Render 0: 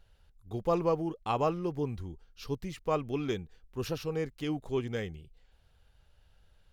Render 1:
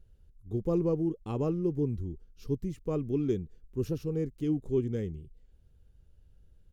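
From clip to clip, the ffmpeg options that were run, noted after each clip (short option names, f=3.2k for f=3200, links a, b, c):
-af "firequalizer=gain_entry='entry(370,0);entry(700,-17);entry(4300,-17);entry(6500,-10)':delay=0.05:min_phase=1,volume=4.5dB"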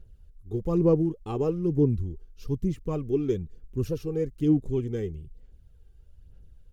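-af "aphaser=in_gain=1:out_gain=1:delay=2.6:decay=0.47:speed=1.1:type=sinusoidal,volume=2.5dB"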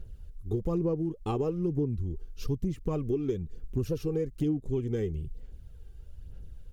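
-af "acompressor=threshold=-34dB:ratio=6,volume=7dB"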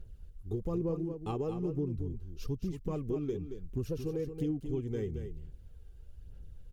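-af "aecho=1:1:225:0.376,volume=-5dB"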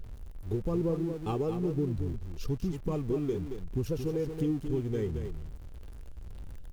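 -af "aeval=exprs='val(0)+0.5*0.00376*sgn(val(0))':c=same,volume=3dB"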